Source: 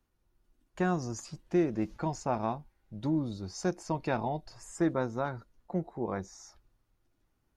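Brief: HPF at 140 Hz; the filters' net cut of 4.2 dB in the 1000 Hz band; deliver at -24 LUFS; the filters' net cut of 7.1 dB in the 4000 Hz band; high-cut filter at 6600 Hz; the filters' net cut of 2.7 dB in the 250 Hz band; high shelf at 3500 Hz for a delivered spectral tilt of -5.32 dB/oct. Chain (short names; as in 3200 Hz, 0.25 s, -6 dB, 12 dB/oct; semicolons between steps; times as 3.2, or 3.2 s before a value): HPF 140 Hz; LPF 6600 Hz; bell 250 Hz -3 dB; bell 1000 Hz -5 dB; high shelf 3500 Hz -5 dB; bell 4000 Hz -4 dB; gain +12.5 dB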